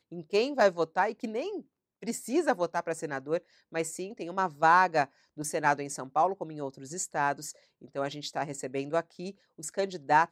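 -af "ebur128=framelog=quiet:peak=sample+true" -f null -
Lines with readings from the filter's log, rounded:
Integrated loudness:
  I:         -30.1 LUFS
  Threshold: -40.5 LUFS
Loudness range:
  LRA:         5.9 LU
  Threshold: -50.6 LUFS
  LRA low:   -34.5 LUFS
  LRA high:  -28.5 LUFS
Sample peak:
  Peak:      -10.2 dBFS
True peak:
  Peak:      -10.2 dBFS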